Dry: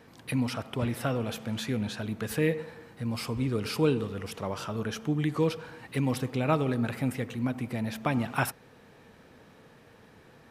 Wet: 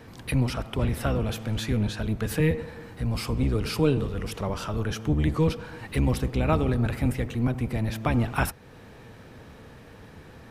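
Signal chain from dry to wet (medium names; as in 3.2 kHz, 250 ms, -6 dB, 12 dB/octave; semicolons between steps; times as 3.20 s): octave divider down 1 oct, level +2 dB; in parallel at 0 dB: compression, threshold -39 dBFS, peak gain reduction 20 dB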